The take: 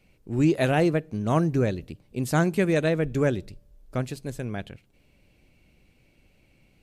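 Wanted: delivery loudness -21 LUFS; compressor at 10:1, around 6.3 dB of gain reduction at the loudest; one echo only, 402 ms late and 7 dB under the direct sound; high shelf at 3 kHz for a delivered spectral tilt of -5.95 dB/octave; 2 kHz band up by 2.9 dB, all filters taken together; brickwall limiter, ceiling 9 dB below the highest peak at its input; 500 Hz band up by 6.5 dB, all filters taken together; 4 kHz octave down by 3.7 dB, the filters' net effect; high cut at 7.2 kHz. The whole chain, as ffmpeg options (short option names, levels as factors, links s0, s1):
-af "lowpass=7200,equalizer=f=500:t=o:g=8,equalizer=f=2000:t=o:g=5.5,highshelf=f=3000:g=-4,equalizer=f=4000:t=o:g=-4,acompressor=threshold=0.112:ratio=10,alimiter=limit=0.1:level=0:latency=1,aecho=1:1:402:0.447,volume=2.66"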